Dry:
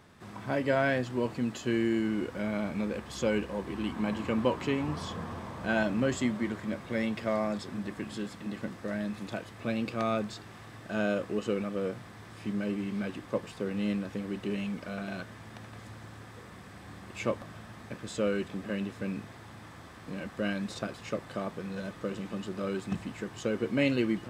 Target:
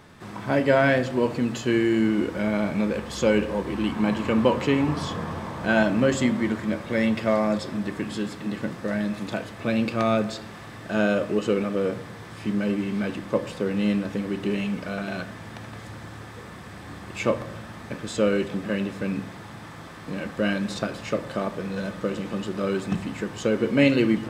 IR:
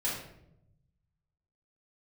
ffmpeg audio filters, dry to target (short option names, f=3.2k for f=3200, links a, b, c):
-filter_complex "[0:a]asplit=2[a][b];[1:a]atrim=start_sample=2205,lowpass=6.9k[c];[b][c]afir=irnorm=-1:irlink=0,volume=-15.5dB[d];[a][d]amix=inputs=2:normalize=0,volume=6.5dB"